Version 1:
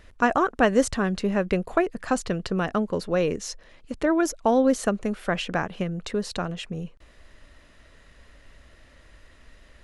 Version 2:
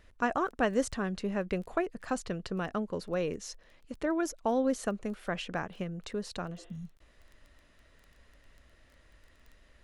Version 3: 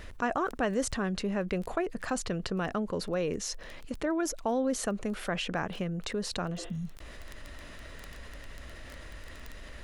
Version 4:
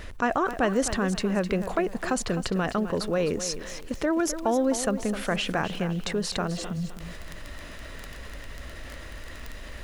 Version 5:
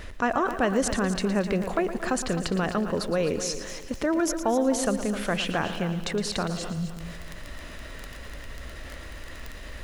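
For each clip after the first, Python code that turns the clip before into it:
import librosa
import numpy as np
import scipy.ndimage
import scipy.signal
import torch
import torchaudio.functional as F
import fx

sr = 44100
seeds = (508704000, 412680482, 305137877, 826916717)

y1 = fx.dmg_crackle(x, sr, seeds[0], per_s=12.0, level_db=-36.0)
y1 = fx.spec_repair(y1, sr, seeds[1], start_s=6.6, length_s=0.33, low_hz=250.0, high_hz=3900.0, source='both')
y1 = F.gain(torch.from_numpy(y1), -8.5).numpy()
y2 = fx.env_flatten(y1, sr, amount_pct=50)
y2 = F.gain(torch.from_numpy(y2), -2.5).numpy()
y3 = fx.echo_crushed(y2, sr, ms=258, feedback_pct=35, bits=9, wet_db=-11.0)
y3 = F.gain(torch.from_numpy(y3), 5.0).numpy()
y4 = fx.echo_feedback(y3, sr, ms=114, feedback_pct=44, wet_db=-12.0)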